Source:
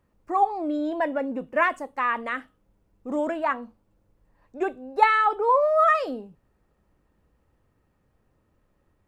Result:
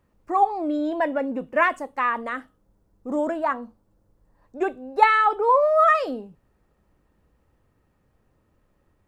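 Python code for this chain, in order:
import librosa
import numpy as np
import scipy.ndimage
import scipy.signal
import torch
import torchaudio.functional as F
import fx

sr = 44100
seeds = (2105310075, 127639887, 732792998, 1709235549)

y = fx.peak_eq(x, sr, hz=2500.0, db=-7.5, octaves=0.96, at=(2.09, 4.61))
y = y * 10.0 ** (2.0 / 20.0)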